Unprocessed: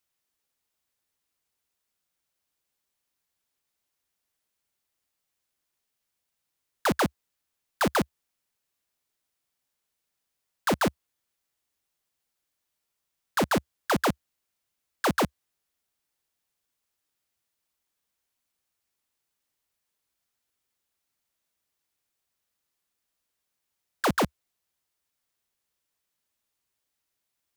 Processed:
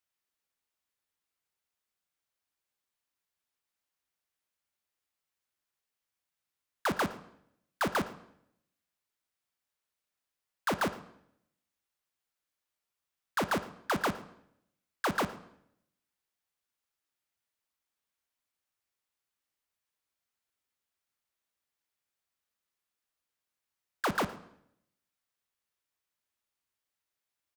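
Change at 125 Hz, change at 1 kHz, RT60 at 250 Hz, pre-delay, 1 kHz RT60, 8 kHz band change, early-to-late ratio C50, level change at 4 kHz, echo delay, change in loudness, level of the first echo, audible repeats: −7.5 dB, −4.5 dB, 0.80 s, 9 ms, 0.65 s, −7.5 dB, 13.5 dB, −6.0 dB, 113 ms, −5.5 dB, −20.0 dB, 1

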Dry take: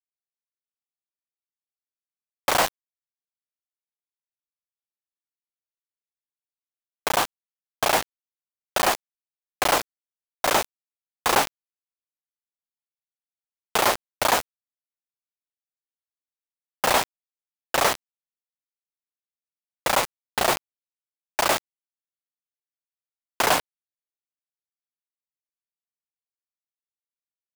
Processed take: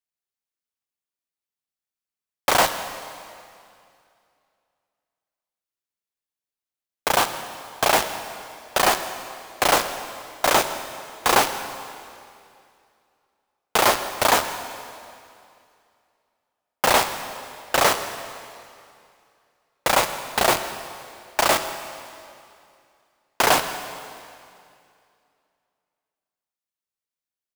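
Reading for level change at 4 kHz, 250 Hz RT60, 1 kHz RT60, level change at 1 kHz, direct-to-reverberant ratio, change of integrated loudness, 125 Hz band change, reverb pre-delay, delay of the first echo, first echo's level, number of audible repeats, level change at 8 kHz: +3.0 dB, 2.4 s, 2.4 s, +3.0 dB, 8.5 dB, +2.0 dB, +3.0 dB, 6 ms, 163 ms, −20.0 dB, 1, +3.0 dB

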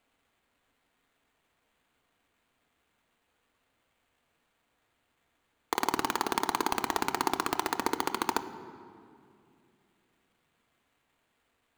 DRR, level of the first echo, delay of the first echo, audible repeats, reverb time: 9.0 dB, no echo audible, no echo audible, no echo audible, 2.4 s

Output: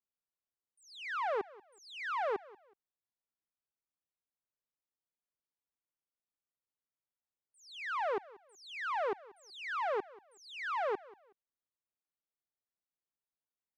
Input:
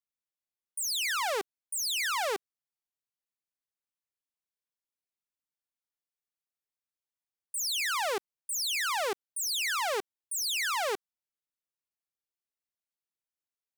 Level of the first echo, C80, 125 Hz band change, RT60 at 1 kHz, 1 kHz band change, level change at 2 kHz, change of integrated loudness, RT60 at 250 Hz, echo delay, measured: −21.0 dB, no reverb audible, can't be measured, no reverb audible, −2.5 dB, −7.5 dB, −7.0 dB, no reverb audible, 186 ms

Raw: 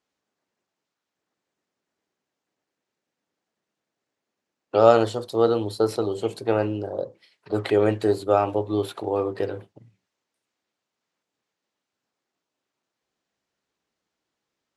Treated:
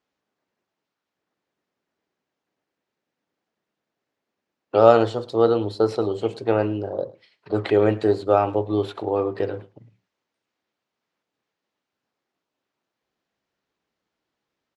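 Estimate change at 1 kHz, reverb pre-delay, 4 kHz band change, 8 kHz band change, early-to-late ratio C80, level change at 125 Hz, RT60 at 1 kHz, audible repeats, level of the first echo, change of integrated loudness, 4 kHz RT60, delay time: +1.5 dB, no reverb audible, −0.5 dB, can't be measured, no reverb audible, +2.0 dB, no reverb audible, 1, −21.0 dB, +1.5 dB, no reverb audible, 107 ms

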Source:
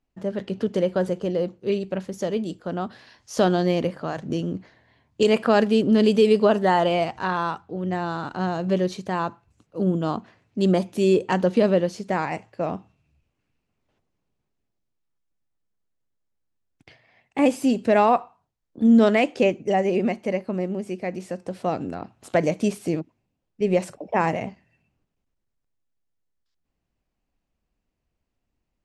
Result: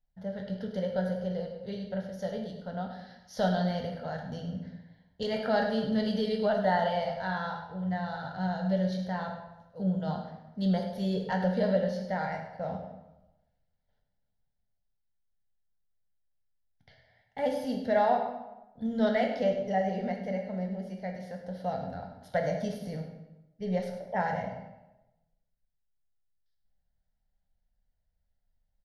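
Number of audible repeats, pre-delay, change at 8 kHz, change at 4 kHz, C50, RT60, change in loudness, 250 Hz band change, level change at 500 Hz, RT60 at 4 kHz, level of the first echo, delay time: 1, 5 ms, below −10 dB, −8.0 dB, 5.0 dB, 1.0 s, −8.5 dB, −9.0 dB, −9.0 dB, 0.70 s, −12.0 dB, 102 ms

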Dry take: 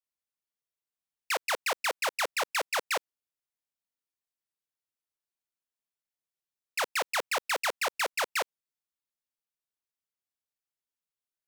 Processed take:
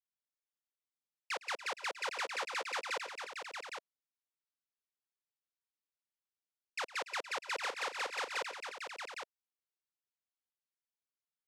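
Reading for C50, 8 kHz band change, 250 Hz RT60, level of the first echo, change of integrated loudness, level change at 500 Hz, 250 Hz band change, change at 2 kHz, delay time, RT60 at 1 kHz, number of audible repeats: no reverb audible, −10.5 dB, no reverb audible, −19.0 dB, −8.5 dB, −8.5 dB, −7.5 dB, −6.5 dB, 109 ms, no reverb audible, 5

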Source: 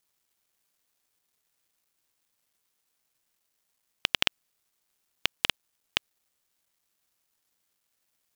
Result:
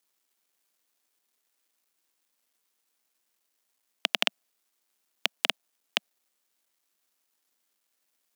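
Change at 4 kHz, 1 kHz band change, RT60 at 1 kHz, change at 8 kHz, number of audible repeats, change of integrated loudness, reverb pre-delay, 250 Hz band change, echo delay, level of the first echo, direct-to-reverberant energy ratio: 0.0 dB, +1.5 dB, no reverb audible, 0.0 dB, no echo audible, 0.0 dB, no reverb audible, −0.5 dB, no echo audible, no echo audible, no reverb audible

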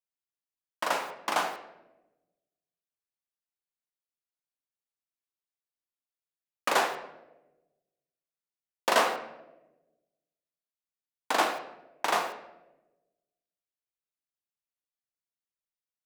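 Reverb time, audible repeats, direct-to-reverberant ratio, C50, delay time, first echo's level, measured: 1.0 s, no echo audible, 5.0 dB, 9.0 dB, no echo audible, no echo audible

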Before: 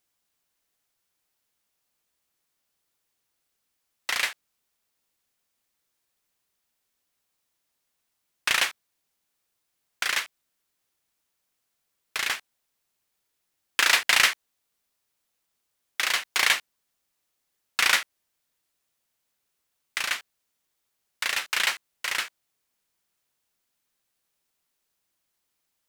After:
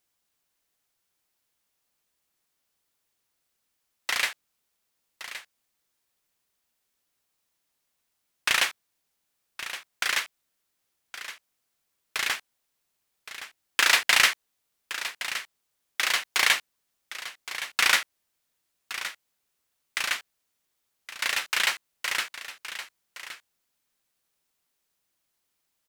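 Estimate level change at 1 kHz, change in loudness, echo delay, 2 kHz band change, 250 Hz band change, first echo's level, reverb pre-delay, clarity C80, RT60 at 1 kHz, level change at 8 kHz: 0.0 dB, −1.5 dB, 1,118 ms, 0.0 dB, 0.0 dB, −12.5 dB, no reverb audible, no reverb audible, no reverb audible, 0.0 dB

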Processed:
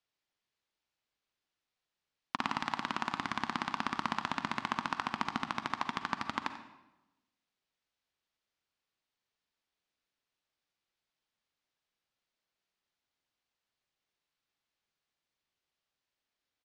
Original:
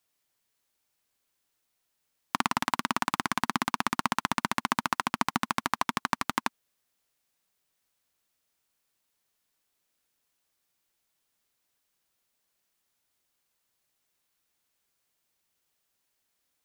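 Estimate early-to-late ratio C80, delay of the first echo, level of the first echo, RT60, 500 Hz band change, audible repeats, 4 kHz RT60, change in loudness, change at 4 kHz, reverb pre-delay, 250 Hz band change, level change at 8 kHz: 10.5 dB, 91 ms, −15.5 dB, 1.0 s, −6.0 dB, 1, 0.75 s, −6.0 dB, −6.0 dB, 39 ms, −6.5 dB, −14.5 dB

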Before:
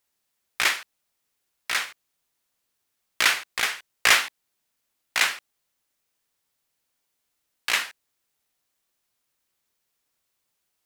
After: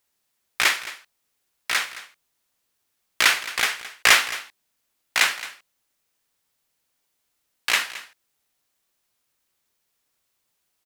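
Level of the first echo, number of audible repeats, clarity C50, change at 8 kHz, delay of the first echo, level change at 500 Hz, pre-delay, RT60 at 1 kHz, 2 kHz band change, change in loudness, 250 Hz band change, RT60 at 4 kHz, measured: −16.0 dB, 1, no reverb audible, +2.5 dB, 218 ms, +2.5 dB, no reverb audible, no reverb audible, +2.5 dB, +2.5 dB, +2.5 dB, no reverb audible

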